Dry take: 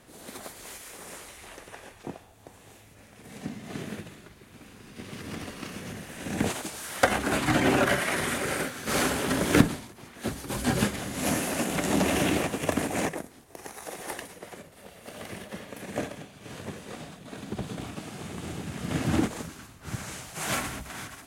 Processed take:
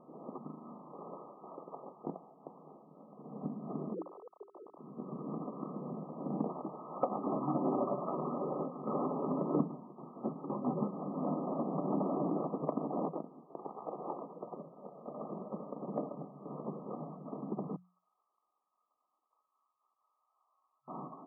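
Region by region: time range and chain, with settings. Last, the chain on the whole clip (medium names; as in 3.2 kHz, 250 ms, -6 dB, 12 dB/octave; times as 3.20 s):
0.38–0.92 s: resonant low shelf 440 Hz -11 dB, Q 3 + ring modulator 830 Hz + flutter echo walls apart 6.6 m, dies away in 0.98 s
3.94–4.79 s: formants replaced by sine waves + hum notches 50/100/150/200/250/300/350/400 Hz
17.76–20.88 s: compression 10:1, threshold -42 dBFS + ladder band-pass 2.4 kHz, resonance 65% + tilt EQ +3 dB/octave
whole clip: FFT band-pass 130–1300 Hz; hum notches 60/120/180 Hz; compression 2:1, threshold -36 dBFS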